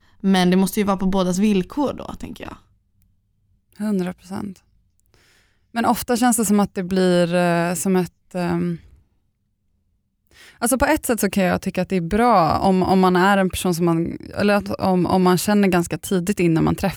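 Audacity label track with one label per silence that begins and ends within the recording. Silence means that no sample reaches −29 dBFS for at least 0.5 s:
2.530000	3.800000	silence
4.560000	5.760000	silence
8.760000	10.620000	silence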